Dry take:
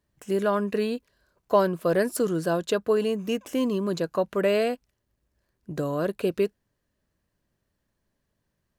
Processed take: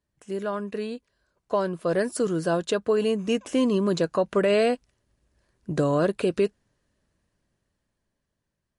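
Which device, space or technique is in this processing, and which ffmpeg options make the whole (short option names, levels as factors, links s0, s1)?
low-bitrate web radio: -af "dynaudnorm=f=360:g=11:m=5.31,alimiter=limit=0.398:level=0:latency=1:release=158,volume=0.562" -ar 32000 -c:a libmp3lame -b:a 48k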